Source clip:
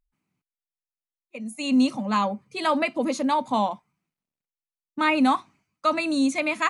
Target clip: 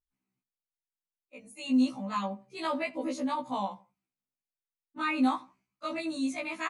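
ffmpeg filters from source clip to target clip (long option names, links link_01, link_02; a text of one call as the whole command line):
ffmpeg -i in.wav -filter_complex "[0:a]asplit=2[link_01][link_02];[link_02]adelay=83,lowpass=frequency=1600:poles=1,volume=-20dB,asplit=2[link_03][link_04];[link_04]adelay=83,lowpass=frequency=1600:poles=1,volume=0.3[link_05];[link_03][link_05]amix=inputs=2:normalize=0[link_06];[link_01][link_06]amix=inputs=2:normalize=0,afftfilt=real='re*1.73*eq(mod(b,3),0)':imag='im*1.73*eq(mod(b,3),0)':win_size=2048:overlap=0.75,volume=-7dB" out.wav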